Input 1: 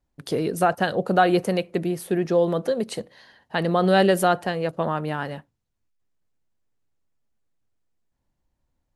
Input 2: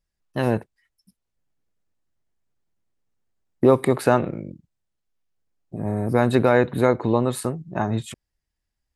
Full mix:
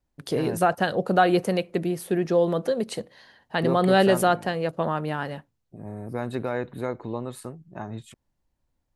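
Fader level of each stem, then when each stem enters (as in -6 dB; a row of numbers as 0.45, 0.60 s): -1.0, -11.5 dB; 0.00, 0.00 s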